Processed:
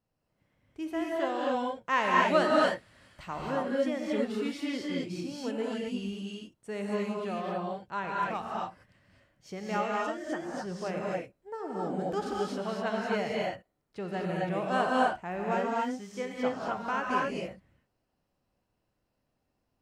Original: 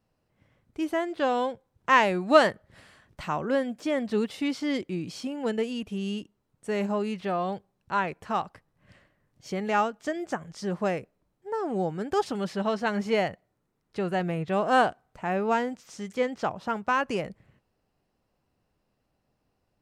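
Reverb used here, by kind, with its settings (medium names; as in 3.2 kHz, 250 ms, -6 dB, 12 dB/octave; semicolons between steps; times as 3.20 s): gated-style reverb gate 290 ms rising, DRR -3.5 dB; trim -8.5 dB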